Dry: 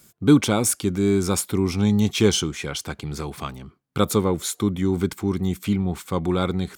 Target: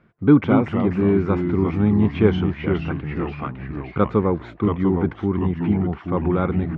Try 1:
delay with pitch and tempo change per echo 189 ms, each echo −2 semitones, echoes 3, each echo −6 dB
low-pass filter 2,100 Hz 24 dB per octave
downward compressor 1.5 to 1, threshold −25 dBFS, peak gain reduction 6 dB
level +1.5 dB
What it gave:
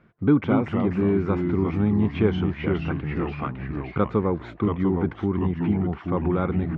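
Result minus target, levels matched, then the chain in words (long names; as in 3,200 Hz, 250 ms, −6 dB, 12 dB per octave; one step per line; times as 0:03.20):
downward compressor: peak gain reduction +6 dB
delay with pitch and tempo change per echo 189 ms, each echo −2 semitones, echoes 3, each echo −6 dB
low-pass filter 2,100 Hz 24 dB per octave
level +1.5 dB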